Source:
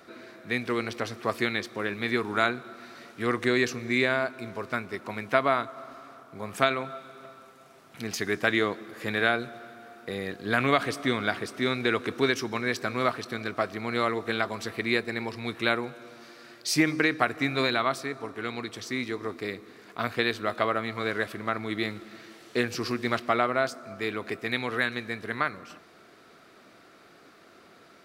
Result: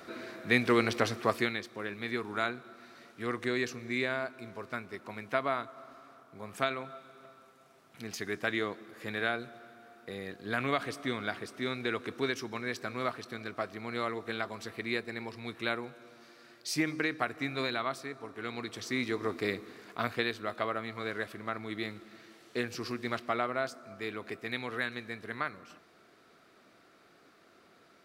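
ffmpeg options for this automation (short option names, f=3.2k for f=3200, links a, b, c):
-af "volume=12dB,afade=t=out:st=1.06:d=0.53:silence=0.298538,afade=t=in:st=18.26:d=1.27:silence=0.354813,afade=t=out:st=19.53:d=0.8:silence=0.375837"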